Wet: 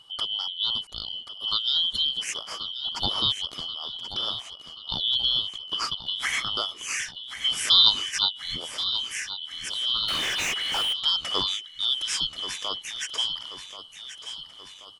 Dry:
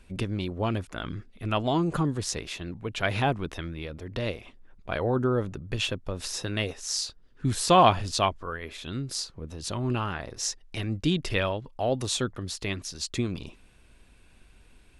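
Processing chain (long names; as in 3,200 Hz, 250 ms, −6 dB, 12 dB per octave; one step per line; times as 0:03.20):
band-splitting scrambler in four parts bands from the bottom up 2413
0:06.23–0:06.50: gain on a spectral selection 630–2,300 Hz +12 dB
on a send: repeating echo 1,082 ms, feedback 55%, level −11.5 dB
0:10.08–0:10.93: on the sum: mid-hump overdrive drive 31 dB, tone 2,000 Hz, clips at −15 dBFS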